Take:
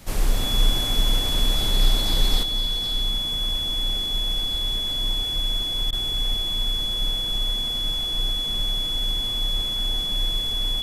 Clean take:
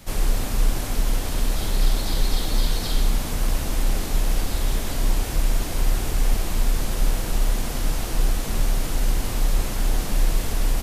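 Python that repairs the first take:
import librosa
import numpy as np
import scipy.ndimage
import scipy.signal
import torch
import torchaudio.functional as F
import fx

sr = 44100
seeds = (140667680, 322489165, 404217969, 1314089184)

y = fx.notch(x, sr, hz=3400.0, q=30.0)
y = fx.fix_interpolate(y, sr, at_s=(5.91,), length_ms=15.0)
y = fx.fix_level(y, sr, at_s=2.43, step_db=7.5)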